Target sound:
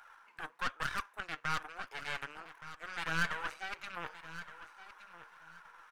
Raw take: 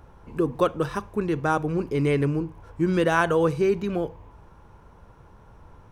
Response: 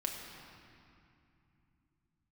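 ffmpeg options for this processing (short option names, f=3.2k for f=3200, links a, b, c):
-af "areverse,acompressor=threshold=-32dB:ratio=6,areverse,aeval=exprs='0.0708*(cos(1*acos(clip(val(0)/0.0708,-1,1)))-cos(1*PI/2))+0.02*(cos(4*acos(clip(val(0)/0.0708,-1,1)))-cos(4*PI/2))':c=same,highpass=f=1.5k:t=q:w=2.5,aeval=exprs='(tanh(35.5*val(0)+0.8)-tanh(0.8))/35.5':c=same,flanger=delay=1.3:depth=5.2:regen=51:speed=1.1:shape=sinusoidal,aecho=1:1:1170|2340:0.2|0.0419,volume=8.5dB"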